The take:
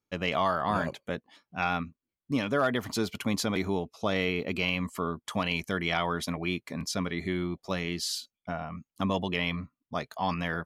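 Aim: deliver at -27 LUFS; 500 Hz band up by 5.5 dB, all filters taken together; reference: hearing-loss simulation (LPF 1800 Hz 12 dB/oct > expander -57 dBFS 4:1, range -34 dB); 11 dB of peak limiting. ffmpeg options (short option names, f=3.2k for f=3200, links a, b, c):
-af "equalizer=f=500:t=o:g=7,alimiter=limit=-22.5dB:level=0:latency=1,lowpass=1.8k,agate=range=-34dB:threshold=-57dB:ratio=4,volume=8.5dB"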